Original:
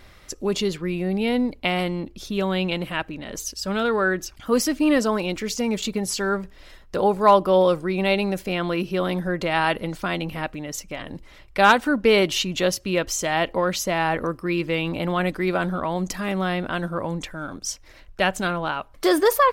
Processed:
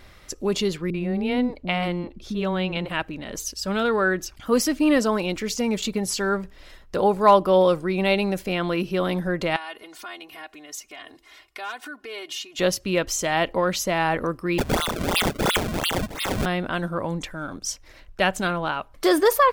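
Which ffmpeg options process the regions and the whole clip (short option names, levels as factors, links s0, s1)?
-filter_complex "[0:a]asettb=1/sr,asplit=3[s0][s1][s2];[s0]atrim=end=0.904[s3];[s1]atrim=start=0.9:end=2.9,asetpts=PTS-STARTPTS,afade=t=in:d=0.004:c=qsin,afade=t=out:st=1.996:d=0.004:c=qsin,lowpass=f=3100:p=1,acrossover=split=360[s4][s5];[s5]adelay=40[s6];[s4][s6]amix=inputs=2:normalize=0,atrim=end_sample=88200[s7];[s2]atrim=start=2.896[s8];[s3][s7]acrossfade=d=0.004:c1=hsin:c2=qsin[s9];[s9][s8]acrossfade=d=0.004:c1=qsin:c2=hsin,asettb=1/sr,asplit=3[s10][s11][s12];[s10]atrim=end=9.564[s13];[s11]atrim=start=9.56:end=12.59,asetpts=PTS-STARTPTS,afade=t=in:d=0.004:c=qsin,afade=t=out:st=3.026:d=0.004:c=qsin,acompressor=threshold=0.0178:ratio=3:attack=3.2:release=140:knee=1:detection=peak,highpass=f=1000:p=1,aecho=1:1:2.8:0.95,atrim=end_sample=133623[s14];[s12]atrim=start=12.586[s15];[s13][s14]acrossfade=d=0.004:c1=hsin:c2=qsin[s16];[s16][s15]acrossfade=d=0.004:c1=qsin:c2=hsin,asettb=1/sr,asplit=3[s17][s18][s19];[s17]atrim=end=14.584[s20];[s18]atrim=start=14.58:end=16.46,asetpts=PTS-STARTPTS,afade=t=in:d=0.004:c=qsin,afade=t=out:st=1.876:d=0.004:c=qsin,lowpass=f=3200:t=q:w=0.5098,lowpass=f=3200:t=q:w=0.6013,lowpass=f=3200:t=q:w=0.9,lowpass=f=3200:t=q:w=2.563,afreqshift=-3800,aecho=1:1:1.5:0.34,atrim=end_sample=82908,acrusher=samples=29:mix=1:aa=0.000001:lfo=1:lforange=46.4:lforate=2.9[s21];[s19]atrim=start=16.456[s22];[s20][s21]acrossfade=d=0.004:c1=hsin:c2=qsin[s23];[s23][s22]acrossfade=d=0.004:c1=qsin:c2=hsin"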